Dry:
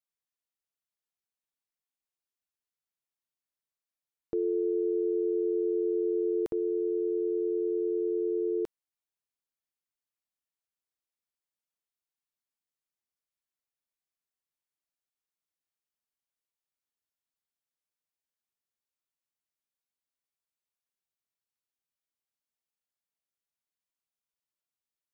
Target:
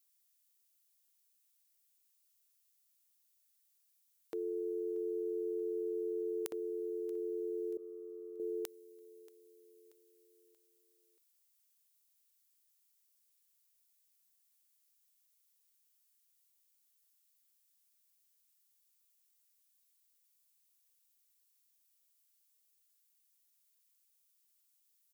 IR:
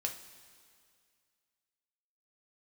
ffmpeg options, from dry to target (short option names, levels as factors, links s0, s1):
-filter_complex "[0:a]aderivative,aecho=1:1:632|1264|1896|2528:0.0841|0.0421|0.021|0.0105,asettb=1/sr,asplit=3[s0][s1][s2];[s0]atrim=end=7.774[s3];[s1]atrim=start=7.77:end=8.4,asetpts=PTS-STARTPTS,afade=t=in:d=0.004:c=qsin,afade=t=out:st=0.626:d=0.004:c=qsin,agate=range=0.0224:threshold=0.00501:ratio=3:detection=peak[s4];[s2]atrim=start=8.396[s5];[s3][s4]acrossfade=d=0.004:c1=hsin:c2=qsin[s6];[s6][s5]acrossfade=d=0.004:c1=qsin:c2=hsin,volume=5.96"